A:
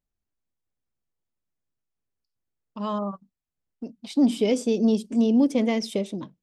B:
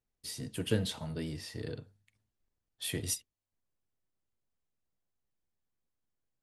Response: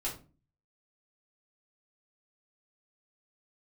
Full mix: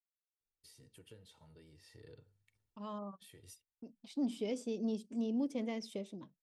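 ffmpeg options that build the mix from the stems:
-filter_complex "[0:a]agate=range=-33dB:threshold=-42dB:ratio=3:detection=peak,volume=-15.5dB,asplit=2[link_01][link_02];[1:a]aecho=1:1:2.2:0.43,acompressor=threshold=-46dB:ratio=2.5,adelay=400,volume=-4.5dB,afade=type=in:start_time=1.83:duration=0.73:silence=0.316228[link_03];[link_02]apad=whole_len=301160[link_04];[link_03][link_04]sidechaincompress=threshold=-50dB:ratio=8:attack=9.4:release=1480[link_05];[link_01][link_05]amix=inputs=2:normalize=0"

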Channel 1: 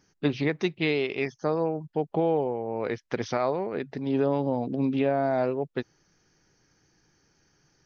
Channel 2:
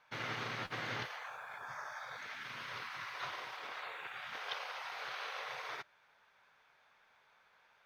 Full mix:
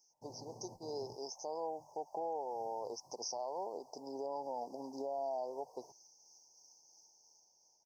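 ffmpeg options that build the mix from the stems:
ffmpeg -i stem1.wav -i stem2.wav -filter_complex "[0:a]highpass=1500,dynaudnorm=framelen=240:gausssize=7:maxgain=8.5dB,tremolo=f=3:d=0.31,volume=1.5dB[link_01];[1:a]adelay=100,volume=-8dB[link_02];[link_01][link_02]amix=inputs=2:normalize=0,asuperstop=centerf=2200:order=20:qfactor=0.54,alimiter=level_in=7.5dB:limit=-24dB:level=0:latency=1:release=120,volume=-7.5dB" out.wav

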